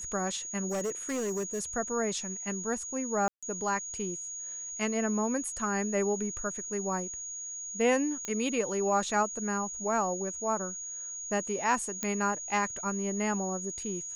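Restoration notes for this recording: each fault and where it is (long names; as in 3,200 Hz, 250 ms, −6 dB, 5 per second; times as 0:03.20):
whistle 6,700 Hz −37 dBFS
0:00.68–0:01.64: clipping −28.5 dBFS
0:03.28–0:03.43: drop-out 146 ms
0:08.25: click −20 dBFS
0:12.03: click −16 dBFS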